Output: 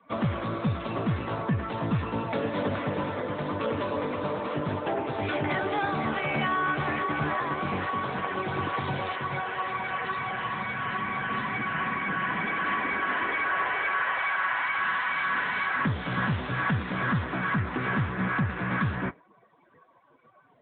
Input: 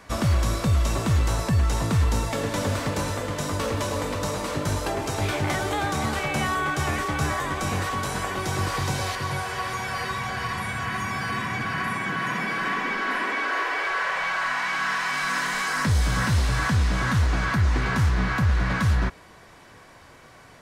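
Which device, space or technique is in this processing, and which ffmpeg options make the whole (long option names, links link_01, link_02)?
mobile call with aggressive noise cancelling: -af "highpass=140,afftdn=noise_reduction=21:noise_floor=-42" -ar 8000 -c:a libopencore_amrnb -b:a 10200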